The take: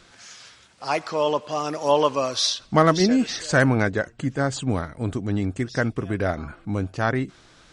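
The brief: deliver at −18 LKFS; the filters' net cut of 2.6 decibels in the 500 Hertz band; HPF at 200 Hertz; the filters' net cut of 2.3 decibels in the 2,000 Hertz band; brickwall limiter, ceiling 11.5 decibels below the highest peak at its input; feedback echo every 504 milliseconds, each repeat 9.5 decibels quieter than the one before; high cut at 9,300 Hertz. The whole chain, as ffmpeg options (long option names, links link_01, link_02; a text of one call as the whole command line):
ffmpeg -i in.wav -af "highpass=200,lowpass=9300,equalizer=frequency=500:width_type=o:gain=-3,equalizer=frequency=2000:width_type=o:gain=-3,alimiter=limit=-15.5dB:level=0:latency=1,aecho=1:1:504|1008|1512|2016:0.335|0.111|0.0365|0.012,volume=10dB" out.wav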